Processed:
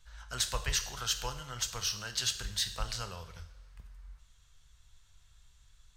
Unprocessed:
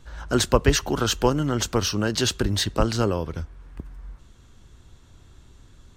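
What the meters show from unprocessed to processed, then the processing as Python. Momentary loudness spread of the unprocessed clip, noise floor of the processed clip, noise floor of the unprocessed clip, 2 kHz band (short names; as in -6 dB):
19 LU, -63 dBFS, -52 dBFS, -10.0 dB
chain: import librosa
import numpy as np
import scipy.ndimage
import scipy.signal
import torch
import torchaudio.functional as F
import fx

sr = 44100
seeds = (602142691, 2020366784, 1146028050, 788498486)

y = fx.tone_stack(x, sr, knobs='10-0-10')
y = fx.rev_double_slope(y, sr, seeds[0], early_s=0.7, late_s=2.4, knee_db=-18, drr_db=7.0)
y = y * librosa.db_to_amplitude(-5.5)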